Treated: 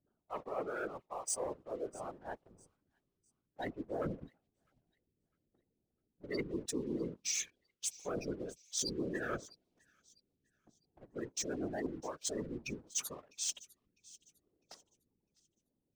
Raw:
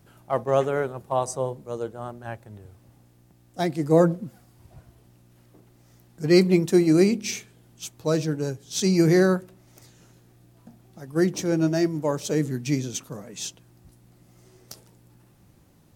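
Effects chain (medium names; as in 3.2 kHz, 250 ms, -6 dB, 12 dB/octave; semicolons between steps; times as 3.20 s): low-pass 11 kHz; spectral gate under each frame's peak -20 dB strong; differentiator; level-controlled noise filter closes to 370 Hz, open at -36 dBFS; dynamic bell 860 Hz, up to -3 dB, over -59 dBFS, Q 1.2; reverse; compression 6:1, threshold -52 dBFS, peak gain reduction 23 dB; reverse; waveshaping leveller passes 2; whisper effect; on a send: feedback echo behind a high-pass 653 ms, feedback 32%, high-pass 2.9 kHz, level -19.5 dB; on the sum: trim +9.5 dB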